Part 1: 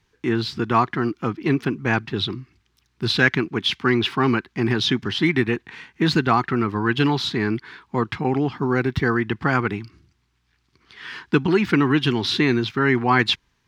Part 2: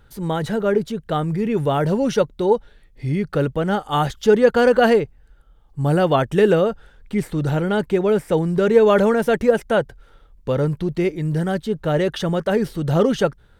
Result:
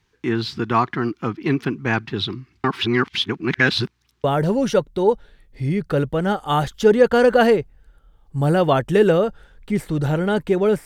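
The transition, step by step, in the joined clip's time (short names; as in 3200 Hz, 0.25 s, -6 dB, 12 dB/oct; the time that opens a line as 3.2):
part 1
2.64–4.24 reverse
4.24 switch to part 2 from 1.67 s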